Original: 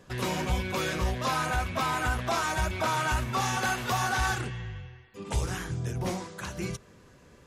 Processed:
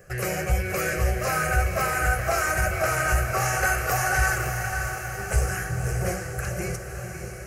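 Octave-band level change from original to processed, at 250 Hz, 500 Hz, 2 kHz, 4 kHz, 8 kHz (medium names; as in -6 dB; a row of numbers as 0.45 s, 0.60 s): -0.5 dB, +6.0 dB, +7.0 dB, -2.5 dB, +7.5 dB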